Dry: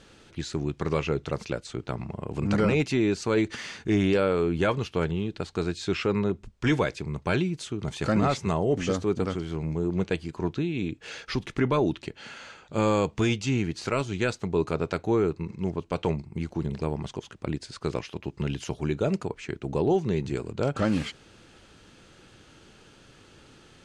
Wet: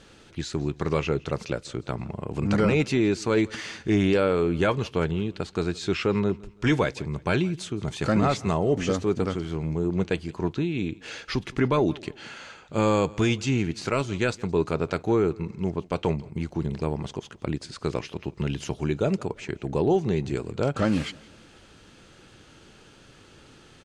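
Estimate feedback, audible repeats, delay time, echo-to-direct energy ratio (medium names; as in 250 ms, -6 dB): 38%, 2, 168 ms, -22.5 dB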